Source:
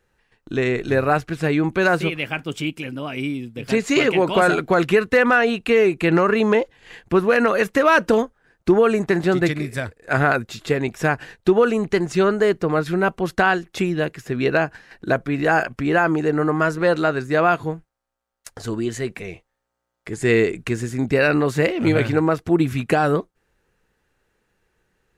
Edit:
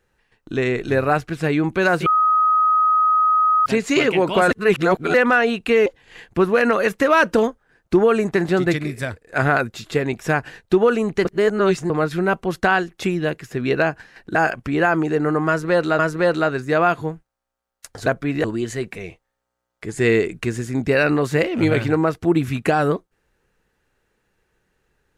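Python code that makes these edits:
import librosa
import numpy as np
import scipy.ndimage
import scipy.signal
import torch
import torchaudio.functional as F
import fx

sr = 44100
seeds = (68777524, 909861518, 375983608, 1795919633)

y = fx.edit(x, sr, fx.bleep(start_s=2.06, length_s=1.6, hz=1260.0, db=-13.0),
    fx.reverse_span(start_s=4.51, length_s=0.63),
    fx.cut(start_s=5.86, length_s=0.75),
    fx.reverse_span(start_s=12.0, length_s=0.65),
    fx.move(start_s=15.1, length_s=0.38, to_s=18.68),
    fx.repeat(start_s=16.61, length_s=0.51, count=2), tone=tone)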